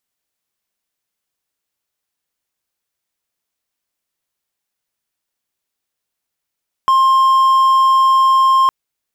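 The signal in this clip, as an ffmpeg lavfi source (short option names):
-f lavfi -i "aevalsrc='0.473*(1-4*abs(mod(1060*t+0.25,1)-0.5))':d=1.81:s=44100"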